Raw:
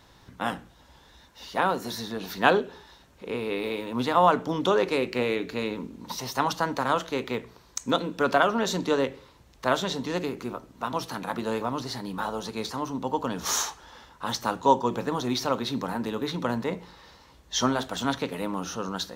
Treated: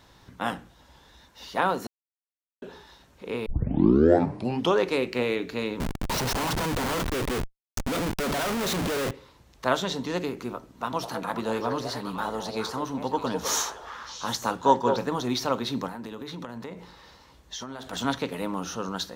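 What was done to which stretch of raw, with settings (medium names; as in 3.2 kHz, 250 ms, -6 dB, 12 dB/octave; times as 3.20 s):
1.87–2.62 s: mute
3.46 s: tape start 1.31 s
5.80–9.11 s: Schmitt trigger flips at -36 dBFS
10.69–15.04 s: repeats whose band climbs or falls 206 ms, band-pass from 530 Hz, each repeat 1.4 oct, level -2 dB
15.87–17.93 s: compression 10:1, threshold -33 dBFS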